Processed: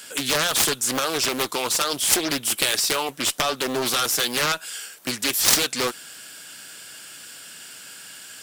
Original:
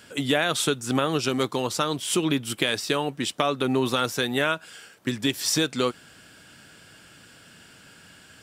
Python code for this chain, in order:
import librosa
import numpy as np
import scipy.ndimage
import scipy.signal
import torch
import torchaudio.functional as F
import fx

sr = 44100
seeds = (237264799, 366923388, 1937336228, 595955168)

y = fx.riaa(x, sr, side='recording')
y = fx.cheby_harmonics(y, sr, harmonics=(7,), levels_db=(-8,), full_scale_db=-1.5)
y = fx.doppler_dist(y, sr, depth_ms=0.53)
y = F.gain(torch.from_numpy(y), -1.0).numpy()